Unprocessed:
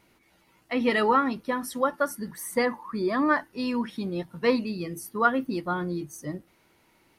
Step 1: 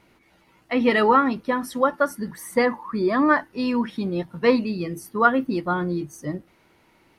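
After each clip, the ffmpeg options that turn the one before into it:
-af "highshelf=f=5.4k:g=-8.5,volume=5dB"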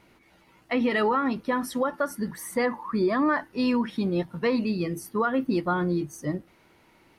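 -af "alimiter=limit=-16dB:level=0:latency=1:release=130"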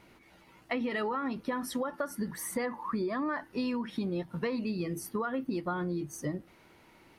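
-af "acompressor=threshold=-30dB:ratio=6"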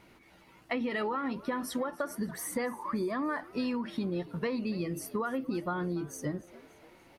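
-filter_complex "[0:a]asplit=5[a][b][c][d][e];[b]adelay=287,afreqshift=87,volume=-20dB[f];[c]adelay=574,afreqshift=174,volume=-26dB[g];[d]adelay=861,afreqshift=261,volume=-32dB[h];[e]adelay=1148,afreqshift=348,volume=-38.1dB[i];[a][f][g][h][i]amix=inputs=5:normalize=0"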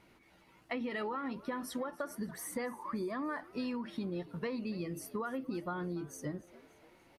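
-af "aresample=32000,aresample=44100,volume=-5dB"

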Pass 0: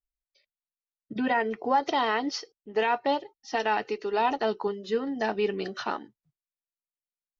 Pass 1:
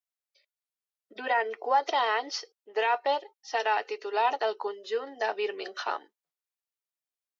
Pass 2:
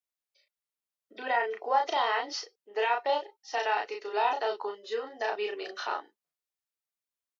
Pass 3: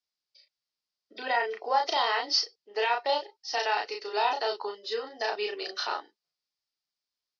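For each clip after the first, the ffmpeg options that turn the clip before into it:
-af "highpass=f=440:w=0.5412,highpass=f=440:w=1.3066"
-filter_complex "[0:a]asplit=2[a][b];[b]adelay=34,volume=-3dB[c];[a][c]amix=inputs=2:normalize=0,volume=-3dB"
-af "lowpass=f=4.9k:t=q:w=4.8"

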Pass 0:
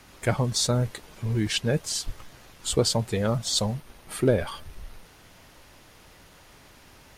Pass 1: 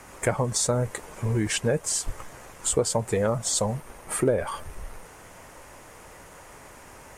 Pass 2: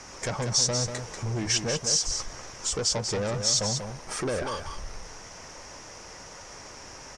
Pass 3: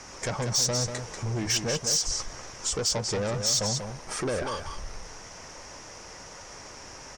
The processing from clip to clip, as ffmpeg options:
-af "equalizer=f=500:t=o:w=1:g=7,equalizer=f=1k:t=o:w=1:g=7,equalizer=f=2k:t=o:w=1:g=5,equalizer=f=4k:t=o:w=1:g=-8,equalizer=f=8k:t=o:w=1:g=11,acompressor=threshold=-24dB:ratio=2.5,lowshelf=f=350:g=2.5"
-af "asoftclip=type=tanh:threshold=-26dB,lowpass=f=5.6k:t=q:w=6.2,aecho=1:1:190:0.447"
-af "asoftclip=type=hard:threshold=-19.5dB"

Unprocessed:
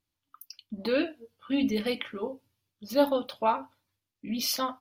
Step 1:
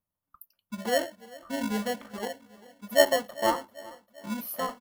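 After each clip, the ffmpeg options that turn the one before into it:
-filter_complex "[0:a]firequalizer=gain_entry='entry(120,0);entry(190,9);entry(310,-6);entry(570,12);entry(1200,5);entry(2000,-13);entry(5400,-23);entry(11000,5)':delay=0.05:min_phase=1,acrossover=split=760|2100[a][b][c];[a]acrusher=samples=36:mix=1:aa=0.000001[d];[d][b][c]amix=inputs=3:normalize=0,aecho=1:1:394|788|1182|1576|1970:0.0891|0.0526|0.031|0.0183|0.0108,volume=-5.5dB"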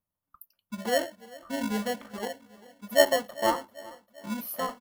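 -af anull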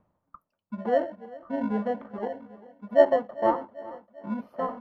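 -af "lowpass=1k,lowshelf=f=100:g=-9.5,areverse,acompressor=mode=upward:threshold=-38dB:ratio=2.5,areverse,volume=4dB"

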